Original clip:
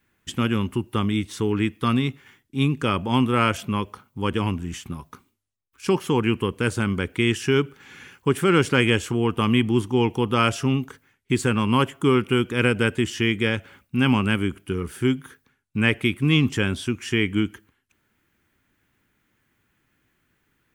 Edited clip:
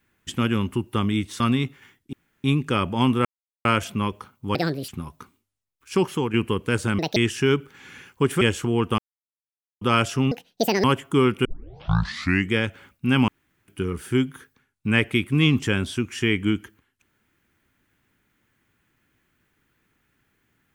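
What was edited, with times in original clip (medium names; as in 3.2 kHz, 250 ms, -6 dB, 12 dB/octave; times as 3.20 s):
1.40–1.84 s: delete
2.57 s: insert room tone 0.31 s
3.38 s: insert silence 0.40 s
4.28–4.81 s: speed 158%
6.00–6.26 s: fade out, to -8 dB
6.91–7.22 s: speed 175%
8.47–8.88 s: delete
9.45–10.28 s: mute
10.78–11.74 s: speed 182%
12.35 s: tape start 1.09 s
14.18–14.58 s: room tone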